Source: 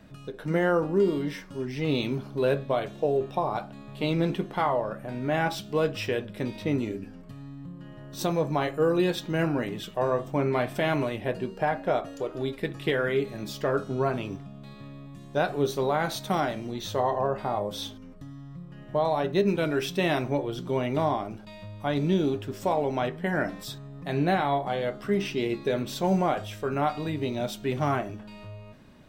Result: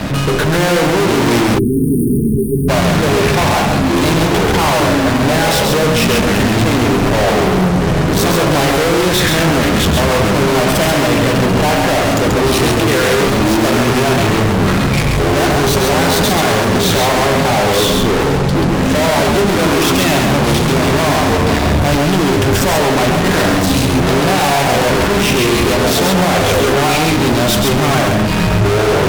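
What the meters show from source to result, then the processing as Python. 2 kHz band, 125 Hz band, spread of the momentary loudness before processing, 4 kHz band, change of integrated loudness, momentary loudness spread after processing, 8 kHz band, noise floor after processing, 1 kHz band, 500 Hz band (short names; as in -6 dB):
+18.5 dB, +18.0 dB, 17 LU, +21.5 dB, +15.5 dB, 2 LU, +26.5 dB, -14 dBFS, +15.0 dB, +13.5 dB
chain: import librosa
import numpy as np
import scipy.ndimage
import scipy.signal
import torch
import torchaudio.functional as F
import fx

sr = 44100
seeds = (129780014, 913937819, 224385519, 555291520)

y = fx.echo_pitch(x, sr, ms=256, semitones=-7, count=3, db_per_echo=-6.0)
y = fx.fuzz(y, sr, gain_db=51.0, gate_db=-57.0)
y = y + 10.0 ** (-3.5 / 20.0) * np.pad(y, (int(135 * sr / 1000.0), 0))[:len(y)]
y = fx.spec_erase(y, sr, start_s=1.58, length_s=1.11, low_hz=470.0, high_hz=8600.0)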